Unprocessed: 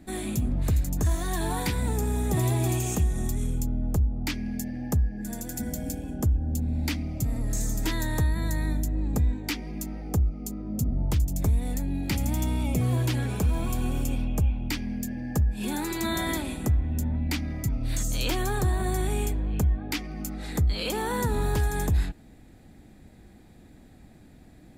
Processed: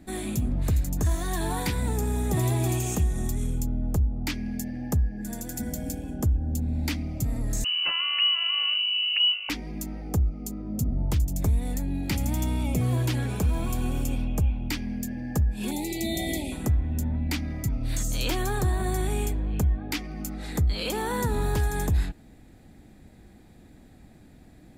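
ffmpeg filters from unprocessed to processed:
-filter_complex "[0:a]asettb=1/sr,asplit=3[s0][s1][s2];[s0]atrim=end=7.644[s3];[s1]atrim=start=7.64:end=9.5,asetpts=PTS-STARTPTS,afade=t=in:d=0.004:c=qsin,afade=t=out:st=1.856:d=0.004:c=qsin,lowpass=f=2600:t=q:w=0.5098,lowpass=f=2600:t=q:w=0.6013,lowpass=f=2600:t=q:w=0.9,lowpass=f=2600:t=q:w=2.563,afreqshift=-3000[s4];[s2]atrim=start=9.496[s5];[s3][s4]acrossfade=d=0.004:c1=hsin:c2=qsin[s6];[s6][s5]acrossfade=d=0.004:c1=qsin:c2=hsin,asettb=1/sr,asplit=3[s7][s8][s9];[s7]atrim=end=15.714[s10];[s8]atrim=start=15.71:end=16.52,asetpts=PTS-STARTPTS,afade=t=in:d=0.004:c=qsin,afade=t=out:st=0.806:d=0.004:c=qsin,asuperstop=centerf=1300:order=20:qfactor=1.2[s11];[s9]atrim=start=16.516[s12];[s10][s11]acrossfade=d=0.004:c1=hsin:c2=qsin[s13];[s13][s12]acrossfade=d=0.004:c1=qsin:c2=hsin"

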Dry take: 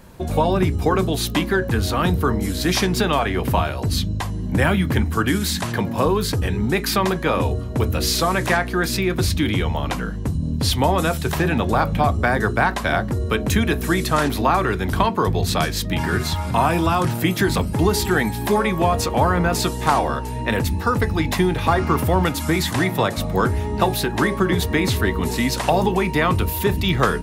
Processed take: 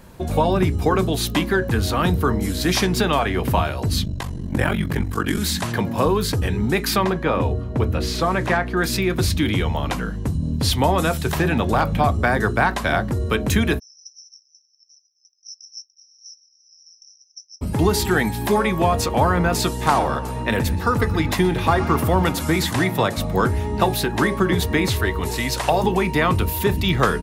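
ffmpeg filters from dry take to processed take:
-filter_complex "[0:a]asettb=1/sr,asplit=3[s0][s1][s2];[s0]atrim=end=4.044[s3];[s1]atrim=start=4.04:end=5.38,asetpts=PTS-STARTPTS,afade=t=in:d=0.004:c=qsin,afade=t=out:st=1.336:d=0.004:c=qsin,aeval=exprs='val(0)*sin(2*PI*23*n/s)':c=same[s4];[s2]atrim=start=5.376[s5];[s3][s4]acrossfade=d=0.004:c1=hsin:c2=qsin[s6];[s6][s5]acrossfade=d=0.004:c1=qsin:c2=hsin,asettb=1/sr,asplit=3[s7][s8][s9];[s7]atrim=end=7.044[s10];[s8]atrim=start=7.04:end=8.77,asetpts=PTS-STARTPTS,afade=t=in:d=0.004:c=qsin,afade=t=out:st=1.726:d=0.004:c=qsin,lowpass=f=2300:p=1[s11];[s9]atrim=start=8.766[s12];[s10][s11]acrossfade=d=0.004:c1=hsin:c2=qsin[s13];[s13][s12]acrossfade=d=0.004:c1=qsin:c2=hsin,asettb=1/sr,asplit=3[s14][s15][s16];[s14]atrim=end=11.544[s17];[s15]atrim=start=11.54:end=11.94,asetpts=PTS-STARTPTS,afade=t=in:d=0.004:c=qsin,afade=t=out:st=0.396:d=0.004:c=qsin,asoftclip=type=hard:threshold=0.316[s18];[s16]atrim=start=11.936[s19];[s17][s18]acrossfade=d=0.004:c1=hsin:c2=qsin[s20];[s20][s19]acrossfade=d=0.004:c1=qsin:c2=hsin,asplit=3[s21][s22][s23];[s21]afade=t=out:st=13.78:d=0.02[s24];[s22]asuperpass=centerf=5600:order=12:qfactor=7.1,afade=t=in:st=13.78:d=0.02,afade=t=out:st=17.61:d=0.02[s25];[s23]afade=t=in:st=17.61:d=0.02[s26];[s24][s25][s26]amix=inputs=3:normalize=0,asplit=3[s27][s28][s29];[s27]afade=t=out:st=19.88:d=0.02[s30];[s28]asplit=2[s31][s32];[s32]adelay=124,lowpass=f=3200:p=1,volume=0.2,asplit=2[s33][s34];[s34]adelay=124,lowpass=f=3200:p=1,volume=0.5,asplit=2[s35][s36];[s36]adelay=124,lowpass=f=3200:p=1,volume=0.5,asplit=2[s37][s38];[s38]adelay=124,lowpass=f=3200:p=1,volume=0.5,asplit=2[s39][s40];[s40]adelay=124,lowpass=f=3200:p=1,volume=0.5[s41];[s31][s33][s35][s37][s39][s41]amix=inputs=6:normalize=0,afade=t=in:st=19.88:d=0.02,afade=t=out:st=22.65:d=0.02[s42];[s29]afade=t=in:st=22.65:d=0.02[s43];[s30][s42][s43]amix=inputs=3:normalize=0,asettb=1/sr,asplit=3[s44][s45][s46];[s44]atrim=end=24.864[s47];[s45]atrim=start=24.86:end=25.84,asetpts=PTS-STARTPTS,afade=t=in:d=0.004:c=qsin,afade=t=out:st=0.976:d=0.004:c=qsin,equalizer=f=220:t=o:w=0.77:g=-9[s48];[s46]atrim=start=25.836[s49];[s47][s48]acrossfade=d=0.004:c1=hsin:c2=qsin[s50];[s50][s49]acrossfade=d=0.004:c1=qsin:c2=hsin"

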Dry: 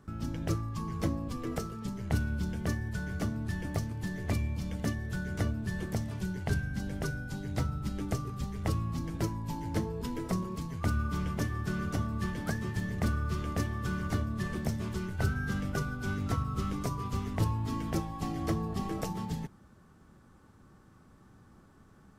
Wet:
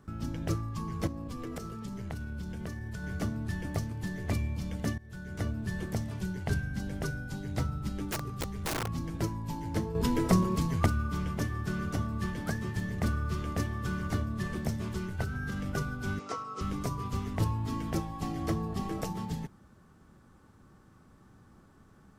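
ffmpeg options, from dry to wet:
-filter_complex "[0:a]asettb=1/sr,asplit=3[s0][s1][s2];[s0]atrim=end=1.074[s3];[s1]atrim=start=1.07:end=3.04,asetpts=PTS-STARTPTS,afade=t=in:d=0.004:c=qsin,afade=t=out:st=1.966:d=0.004:c=qsin,acompressor=threshold=0.02:ratio=6:attack=3.2:release=140:knee=1:detection=peak[s4];[s2]atrim=start=3.036[s5];[s3][s4]acrossfade=d=0.004:c1=hsin:c2=qsin[s6];[s6][s5]acrossfade=d=0.004:c1=qsin:c2=hsin,asplit=3[s7][s8][s9];[s7]afade=t=out:st=8.08:d=0.02[s10];[s8]aeval=exprs='(mod(23.7*val(0)+1,2)-1)/23.7':c=same,afade=t=in:st=8.08:d=0.02,afade=t=out:st=8.86:d=0.02[s11];[s9]afade=t=in:st=8.86:d=0.02[s12];[s10][s11][s12]amix=inputs=3:normalize=0,asettb=1/sr,asplit=3[s13][s14][s15];[s13]atrim=end=15.224[s16];[s14]atrim=start=15.22:end=15.66,asetpts=PTS-STARTPTS,afade=t=in:d=0.004:c=qsin,afade=t=out:st=0.436:d=0.004:c=qsin,acompressor=threshold=0.0316:ratio=6:attack=3.2:release=140:knee=1:detection=peak[s17];[s15]atrim=start=15.656[s18];[s16][s17]acrossfade=d=0.004:c1=hsin:c2=qsin[s19];[s19][s18]acrossfade=d=0.004:c1=qsin:c2=hsin,asettb=1/sr,asplit=3[s20][s21][s22];[s20]atrim=end=16.194[s23];[s21]atrim=start=16.19:end=16.61,asetpts=PTS-STARTPTS,afade=t=in:d=0.004:c=qsin,afade=t=out:st=0.416:d=0.004:c=qsin,highpass=450,equalizer=f=450:t=q:w=4:g=7,equalizer=f=1200:t=q:w=4:g=4,equalizer=f=1700:t=q:w=4:g=-5,equalizer=f=3600:t=q:w=4:g=-4,equalizer=f=5500:t=q:w=4:g=4,lowpass=f=8000:w=0.5412,lowpass=f=8000:w=1.3066[s24];[s22]atrim=start=16.606[s25];[s23][s24]acrossfade=d=0.004:c1=hsin:c2=qsin[s26];[s26][s25]acrossfade=d=0.004:c1=qsin:c2=hsin,asplit=4[s27][s28][s29][s30];[s27]atrim=end=4.98,asetpts=PTS-STARTPTS,afade=t=out:st=4.976:d=0.004:c=hsin:silence=0.11885[s31];[s28]atrim=start=4.98:end=9.952,asetpts=PTS-STARTPTS,afade=t=in:d=0.62:silence=0.11885[s32];[s29]atrim=start=9.948:end=10.862,asetpts=PTS-STARTPTS,volume=2.51[s33];[s30]atrim=start=10.858[s34];[s31][s32]concat=n=2:v=0:a=1[s35];[s35][s33]acrossfade=d=0.004:c1=hsin:c2=hsin[s36];[s36][s34]acrossfade=d=0.004:c1=hsin:c2=hsin"

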